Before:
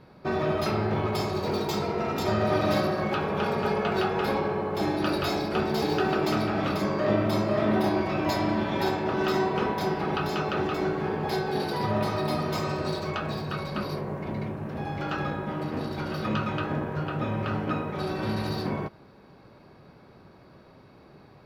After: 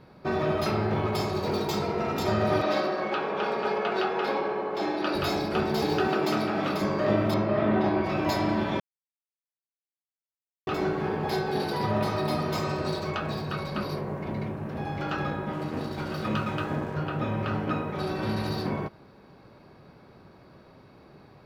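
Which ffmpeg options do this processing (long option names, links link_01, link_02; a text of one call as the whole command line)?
ffmpeg -i in.wav -filter_complex "[0:a]asettb=1/sr,asplit=3[link_01][link_02][link_03];[link_01]atrim=end=2.624[link_04];[link_02]atrim=start=2.62:end=5.15,asetpts=PTS-STARTPTS,afade=type=in:duration=0.004:curve=qsin,afade=type=out:start_time=2.526:duration=0.004:curve=qsin,acrossover=split=240 6300:gain=0.0794 1 0.2[link_05][link_06][link_07];[link_05][link_06][link_07]amix=inputs=3:normalize=0[link_08];[link_03]atrim=start=5.146[link_09];[link_04][link_08]acrossfade=duration=0.004:curve1=hsin:curve2=qsin[link_10];[link_10][link_09]acrossfade=duration=0.004:curve1=qsin:curve2=hsin,asettb=1/sr,asplit=3[link_11][link_12][link_13];[link_11]atrim=end=6.074[link_14];[link_12]atrim=start=6.07:end=6.81,asetpts=PTS-STARTPTS,afade=type=in:duration=0.004:curve=qsin,afade=type=out:start_time=0.736:duration=0.004:curve=qsin,highpass=160[link_15];[link_13]atrim=start=6.806[link_16];[link_14][link_15]acrossfade=duration=0.004:curve1=hsin:curve2=qsin[link_17];[link_17][link_16]acrossfade=duration=0.004:curve1=qsin:curve2=hsin,asettb=1/sr,asplit=3[link_18][link_19][link_20];[link_18]atrim=end=7.344[link_21];[link_19]atrim=start=7.34:end=8.04,asetpts=PTS-STARTPTS,afade=type=in:duration=0.004:curve=qsin,afade=type=out:start_time=0.696:duration=0.004:curve=qsin,lowpass=3100[link_22];[link_20]atrim=start=8.036[link_23];[link_21][link_22]acrossfade=duration=0.004:curve1=hsin:curve2=qsin[link_24];[link_24][link_23]acrossfade=duration=0.004:curve1=qsin:curve2=hsin,asettb=1/sr,asplit=3[link_25][link_26][link_27];[link_25]atrim=end=15.534[link_28];[link_26]atrim=start=15.53:end=16.95,asetpts=PTS-STARTPTS,afade=type=in:duration=0.004:curve=qsin,afade=type=out:start_time=1.416:duration=0.004:curve=qsin,aeval=exprs='sgn(val(0))*max(abs(val(0))-0.00355,0)':channel_layout=same[link_29];[link_27]atrim=start=16.946[link_30];[link_28][link_29]acrossfade=duration=0.004:curve1=hsin:curve2=qsin[link_31];[link_31][link_30]acrossfade=duration=0.004:curve1=qsin:curve2=hsin,asplit=3[link_32][link_33][link_34];[link_32]atrim=end=8.8,asetpts=PTS-STARTPTS,afade=type=out:start_time=8.796:duration=0.004:curve=hsin[link_35];[link_33]atrim=start=8.8:end=10.67,asetpts=PTS-STARTPTS,volume=0[link_36];[link_34]atrim=start=10.67,asetpts=PTS-STARTPTS,afade=type=in:duration=0.004:curve=hsin[link_37];[link_35][link_36][link_37]concat=n=3:v=0:a=1" out.wav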